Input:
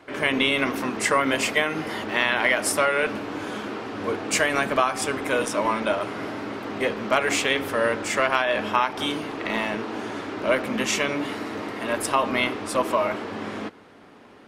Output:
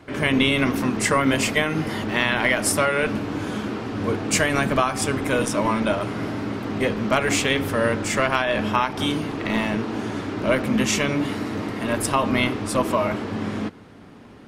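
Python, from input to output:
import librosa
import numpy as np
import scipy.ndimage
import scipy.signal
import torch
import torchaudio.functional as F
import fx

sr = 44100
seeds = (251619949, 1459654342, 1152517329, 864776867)

y = fx.bass_treble(x, sr, bass_db=13, treble_db=3)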